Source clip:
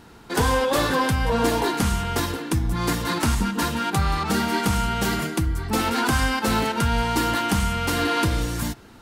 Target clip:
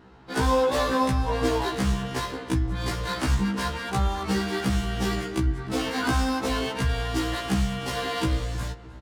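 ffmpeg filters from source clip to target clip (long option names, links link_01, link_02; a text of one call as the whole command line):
ffmpeg -i in.wav -filter_complex "[0:a]adynamicsmooth=sensitivity=8:basefreq=3200,asplit=2[link_01][link_02];[link_02]adelay=308,lowpass=frequency=2600:poles=1,volume=-16dB,asplit=2[link_03][link_04];[link_04]adelay=308,lowpass=frequency=2600:poles=1,volume=0.46,asplit=2[link_05][link_06];[link_06]adelay=308,lowpass=frequency=2600:poles=1,volume=0.46,asplit=2[link_07][link_08];[link_08]adelay=308,lowpass=frequency=2600:poles=1,volume=0.46[link_09];[link_01][link_03][link_05][link_07][link_09]amix=inputs=5:normalize=0,afftfilt=real='re*1.73*eq(mod(b,3),0)':imag='im*1.73*eq(mod(b,3),0)':win_size=2048:overlap=0.75,volume=-1dB" out.wav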